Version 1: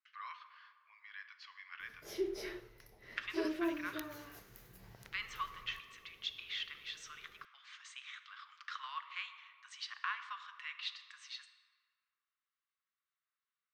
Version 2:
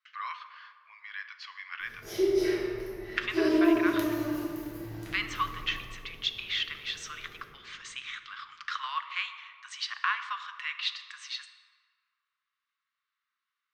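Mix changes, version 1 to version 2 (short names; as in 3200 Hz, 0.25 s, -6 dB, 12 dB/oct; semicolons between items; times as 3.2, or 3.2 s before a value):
speech +10.0 dB; background: send on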